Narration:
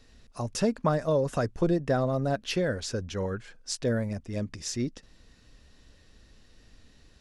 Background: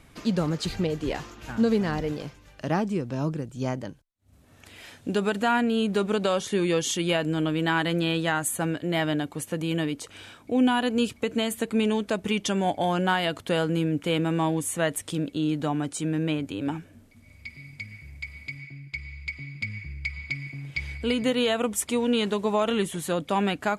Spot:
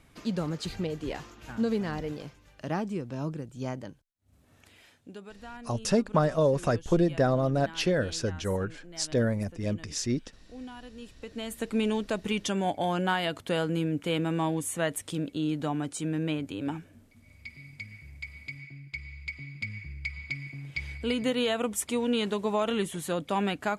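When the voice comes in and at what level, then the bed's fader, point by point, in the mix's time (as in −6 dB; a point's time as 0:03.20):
5.30 s, +1.5 dB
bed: 0:04.56 −5.5 dB
0:05.28 −21.5 dB
0:10.99 −21.5 dB
0:11.69 −3.5 dB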